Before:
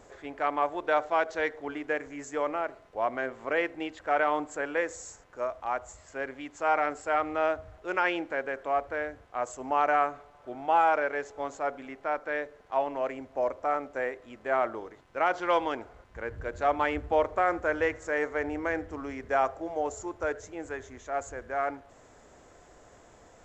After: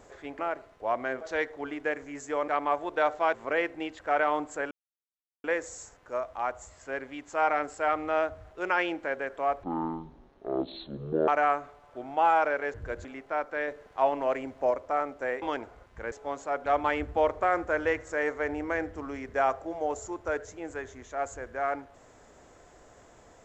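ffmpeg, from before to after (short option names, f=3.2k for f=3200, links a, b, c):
-filter_complex "[0:a]asplit=15[a][b][c][d][e][f][g][h][i][j][k][l][m][n][o];[a]atrim=end=0.392[p];[b]atrim=start=2.518:end=3.342[q];[c]atrim=start=1.248:end=2.522[r];[d]atrim=start=0.388:end=1.252[s];[e]atrim=start=3.338:end=4.71,asetpts=PTS-STARTPTS,afade=t=out:st=1.368:d=0.004:c=hsin,apad=pad_dur=0.73[t];[f]atrim=start=4.71:end=8.904,asetpts=PTS-STARTPTS,afade=t=in:d=0.004:c=hsin[u];[g]atrim=start=8.9:end=9.79,asetpts=PTS-STARTPTS,asetrate=23814,aresample=44100,atrim=end_sample=72683,asetpts=PTS-STARTPTS[v];[h]atrim=start=9.786:end=11.252[w];[i]atrim=start=16.298:end=16.612[x];[j]atrim=start=11.788:end=12.422[y];[k]atrim=start=12.418:end=13.452,asetpts=PTS-STARTPTS,volume=3dB[z];[l]atrim=start=13.448:end=14.162[aa];[m]atrim=start=15.598:end=16.302[ab];[n]atrim=start=11.248:end=11.792[ac];[o]atrim=start=16.608[ad];[p][q]acrossfade=d=0.004:c1=hsin:c2=hsin[ae];[ae][r]acrossfade=d=0.004:c1=hsin:c2=hsin[af];[af][s]acrossfade=d=0.004:c1=hsin:c2=hsin[ag];[t][u]concat=n=2:v=0:a=1[ah];[ag][ah]acrossfade=d=0.004:c1=hsin:c2=hsin[ai];[ai][v]acrossfade=d=0.004:c1=hsin:c2=hsin[aj];[aj][w]acrossfade=d=0.004:c1=hsin:c2=hsin[ak];[ak][x]acrossfade=d=0.004:c1=hsin:c2=hsin[al];[al][y]acrossfade=d=0.004:c1=hsin:c2=hsin[am];[am][z]acrossfade=d=0.004:c1=hsin:c2=hsin[an];[an][aa]acrossfade=d=0.004:c1=hsin:c2=hsin[ao];[ao][ab]acrossfade=d=0.004:c1=hsin:c2=hsin[ap];[ap][ac]acrossfade=d=0.004:c1=hsin:c2=hsin[aq];[aq][ad]acrossfade=d=0.004:c1=hsin:c2=hsin"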